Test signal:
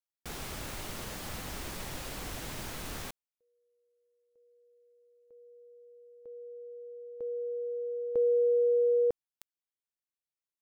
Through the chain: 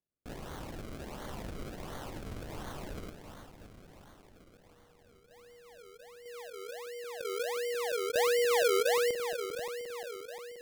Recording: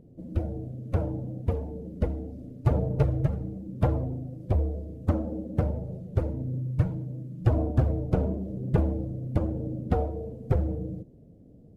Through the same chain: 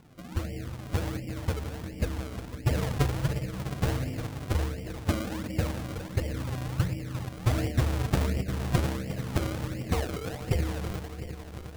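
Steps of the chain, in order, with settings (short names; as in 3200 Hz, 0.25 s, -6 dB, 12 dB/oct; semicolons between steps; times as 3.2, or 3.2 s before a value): regenerating reverse delay 0.176 s, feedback 84%, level -10.5 dB; decimation with a swept rate 34×, swing 100% 1.4 Hz; gain -3 dB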